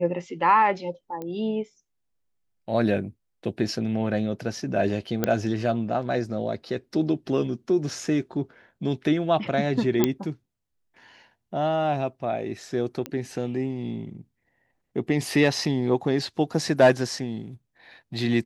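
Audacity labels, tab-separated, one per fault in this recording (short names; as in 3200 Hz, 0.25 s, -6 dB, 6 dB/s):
1.220000	1.220000	pop -22 dBFS
5.240000	5.240000	pop -8 dBFS
10.040000	10.040000	pop -6 dBFS
13.060000	13.060000	pop -16 dBFS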